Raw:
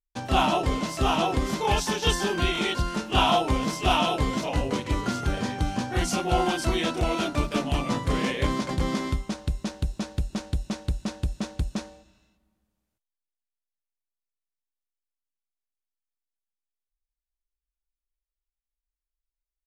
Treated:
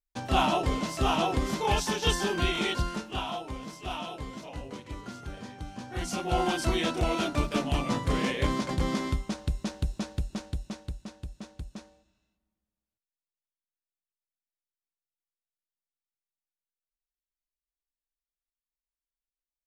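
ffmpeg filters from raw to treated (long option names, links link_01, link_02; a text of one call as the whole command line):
ffmpeg -i in.wav -af "volume=9dB,afade=type=out:start_time=2.82:duration=0.4:silence=0.281838,afade=type=in:start_time=5.75:duration=0.81:silence=0.266073,afade=type=out:start_time=9.94:duration=1.16:silence=0.316228" out.wav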